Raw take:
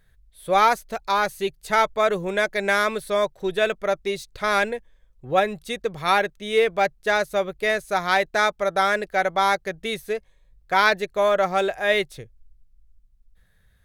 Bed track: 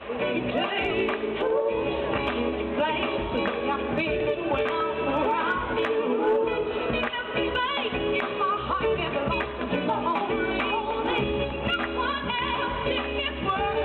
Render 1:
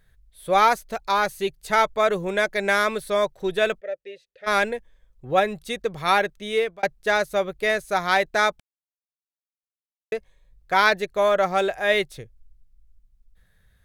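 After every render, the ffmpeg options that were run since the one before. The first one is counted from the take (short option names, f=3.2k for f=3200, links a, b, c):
-filter_complex "[0:a]asplit=3[a][b][c];[a]afade=t=out:st=3.79:d=0.02[d];[b]asplit=3[e][f][g];[e]bandpass=f=530:t=q:w=8,volume=0dB[h];[f]bandpass=f=1.84k:t=q:w=8,volume=-6dB[i];[g]bandpass=f=2.48k:t=q:w=8,volume=-9dB[j];[h][i][j]amix=inputs=3:normalize=0,afade=t=in:st=3.79:d=0.02,afade=t=out:st=4.46:d=0.02[k];[c]afade=t=in:st=4.46:d=0.02[l];[d][k][l]amix=inputs=3:normalize=0,asplit=4[m][n][o][p];[m]atrim=end=6.83,asetpts=PTS-STARTPTS,afade=t=out:st=6.33:d=0.5:c=qsin[q];[n]atrim=start=6.83:end=8.6,asetpts=PTS-STARTPTS,afade=t=in:d=0.004:c=hsin,afade=t=out:st=1.766:d=0.004:c=hsin[r];[o]atrim=start=8.6:end=10.12,asetpts=PTS-STARTPTS,volume=0[s];[p]atrim=start=10.12,asetpts=PTS-STARTPTS,afade=t=in:d=0.004:c=hsin[t];[q][r][s][t]concat=n=4:v=0:a=1"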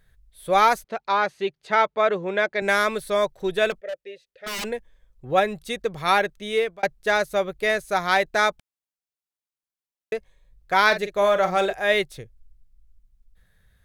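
-filter_complex "[0:a]asettb=1/sr,asplit=3[a][b][c];[a]atrim=end=0.844[d];[b]atrim=start=0.84:end=2.62,asetpts=PTS-STARTPTS,afade=t=in:d=0.004:c=qsin,afade=t=out:st=1.776:d=0.004:c=qsin,highpass=190,lowpass=3.6k[e];[c]atrim=start=2.616[f];[d][e]acrossfade=d=0.004:c1=hsin:c2=qsin[g];[g][f]acrossfade=d=0.004:c1=qsin:c2=hsin,asplit=3[h][i][j];[h]afade=t=out:st=3.7:d=0.02[k];[i]aeval=exprs='0.0562*(abs(mod(val(0)/0.0562+3,4)-2)-1)':c=same,afade=t=in:st=3.7:d=0.02,afade=t=out:st=4.64:d=0.02[l];[j]afade=t=in:st=4.64:d=0.02[m];[k][l][m]amix=inputs=3:normalize=0,asettb=1/sr,asplit=3[n][o][p];[n]atrim=end=10.854[q];[o]atrim=start=10.85:end=11.73,asetpts=PTS-STARTPTS,afade=t=in:d=0.004:c=qsin,afade=t=out:st=0.876:d=0.004:c=qsin,asplit=2[r][s];[s]adelay=45,volume=-10dB[t];[r][t]amix=inputs=2:normalize=0,atrim=end_sample=38808[u];[p]atrim=start=11.726[v];[q][u]acrossfade=d=0.004:c1=hsin:c2=qsin[w];[w][v]acrossfade=d=0.004:c1=qsin:c2=hsin"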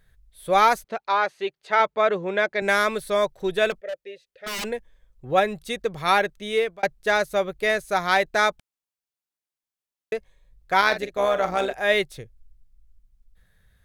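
-filter_complex "[0:a]asettb=1/sr,asplit=3[a][b][c];[a]atrim=end=0.984[d];[b]atrim=start=0.98:end=1.8,asetpts=PTS-STARTPTS,afade=t=in:d=0.004:c=qsin,afade=t=out:st=0.816:d=0.004:c=qsin,bass=f=250:g=-12,treble=f=4k:g=-2[e];[c]atrim=start=1.796[f];[d][e]acrossfade=d=0.004:c1=hsin:c2=qsin[g];[g][f]acrossfade=d=0.004:c1=qsin:c2=hsin,asettb=1/sr,asplit=3[h][i][j];[h]atrim=end=10.814[k];[i]atrim=start=10.81:end=11.78,asetpts=PTS-STARTPTS,afade=t=in:d=0.004:c=qsin,afade=t=out:st=0.966:d=0.004:c=qsin,tremolo=f=130:d=0.571[l];[j]atrim=start=11.776[m];[k][l]acrossfade=d=0.004:c1=hsin:c2=qsin[n];[n][m]acrossfade=d=0.004:c1=qsin:c2=hsin"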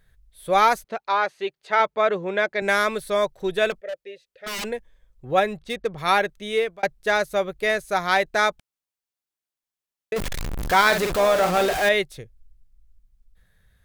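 -filter_complex "[0:a]asplit=3[a][b][c];[a]afade=t=out:st=5.56:d=0.02[d];[b]adynamicsmooth=sensitivity=7:basefreq=2.7k,afade=t=in:st=5.56:d=0.02,afade=t=out:st=5.97:d=0.02[e];[c]afade=t=in:st=5.97:d=0.02[f];[d][e][f]amix=inputs=3:normalize=0,asettb=1/sr,asplit=3[g][h][i];[g]atrim=end=10.164[j];[h]atrim=start=10.16:end=11.89,asetpts=PTS-STARTPTS,afade=t=in:d=0.004:c=qsin,afade=t=out:st=1.726:d=0.004:c=qsin,aeval=exprs='val(0)+0.5*0.0891*sgn(val(0))':c=same[k];[i]atrim=start=11.886[l];[j][k]acrossfade=d=0.004:c1=hsin:c2=qsin[m];[m][l]acrossfade=d=0.004:c1=qsin:c2=hsin"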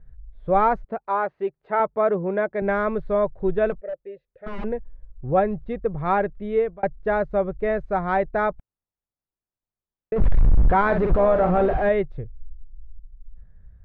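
-af "lowpass=1.2k,aemphasis=mode=reproduction:type=bsi"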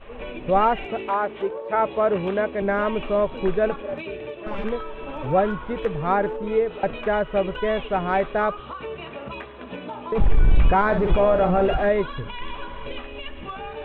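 -filter_complex "[1:a]volume=-8.5dB[a];[0:a][a]amix=inputs=2:normalize=0"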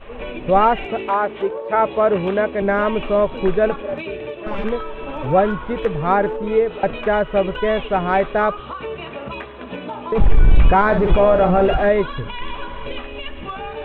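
-af "volume=4.5dB"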